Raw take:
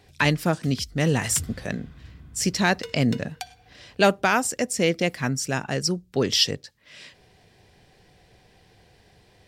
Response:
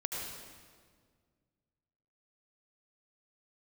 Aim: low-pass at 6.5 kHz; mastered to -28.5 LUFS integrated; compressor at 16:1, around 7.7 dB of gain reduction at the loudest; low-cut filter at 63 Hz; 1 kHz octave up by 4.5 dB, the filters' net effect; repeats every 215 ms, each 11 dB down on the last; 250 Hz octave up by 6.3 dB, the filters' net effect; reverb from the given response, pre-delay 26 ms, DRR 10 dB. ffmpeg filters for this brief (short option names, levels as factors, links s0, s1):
-filter_complex "[0:a]highpass=63,lowpass=6500,equalizer=f=250:t=o:g=8,equalizer=f=1000:t=o:g=5.5,acompressor=threshold=0.126:ratio=16,aecho=1:1:215|430|645:0.282|0.0789|0.0221,asplit=2[s0][s1];[1:a]atrim=start_sample=2205,adelay=26[s2];[s1][s2]afir=irnorm=-1:irlink=0,volume=0.224[s3];[s0][s3]amix=inputs=2:normalize=0,volume=0.668"